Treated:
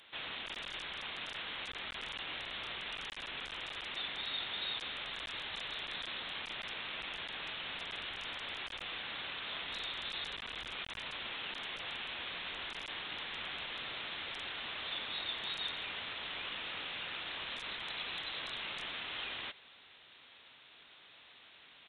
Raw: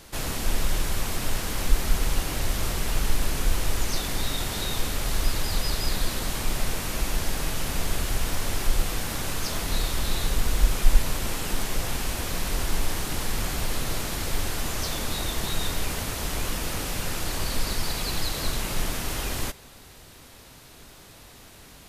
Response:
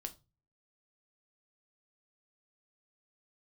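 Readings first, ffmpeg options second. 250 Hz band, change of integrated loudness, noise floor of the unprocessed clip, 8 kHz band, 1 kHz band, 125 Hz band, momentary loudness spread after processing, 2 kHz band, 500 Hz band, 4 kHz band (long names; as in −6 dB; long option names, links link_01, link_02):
−21.0 dB, −11.0 dB, −49 dBFS, −32.5 dB, −11.5 dB, −29.0 dB, 5 LU, −5.5 dB, −16.0 dB, −5.5 dB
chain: -af "aresample=8000,asoftclip=type=tanh:threshold=-12.5dB,aresample=44100,lowshelf=frequency=410:gain=4,volume=14.5dB,asoftclip=hard,volume=-14.5dB,aderivative,volume=6dB" -ar 24000 -c:a libmp3lame -b:a 160k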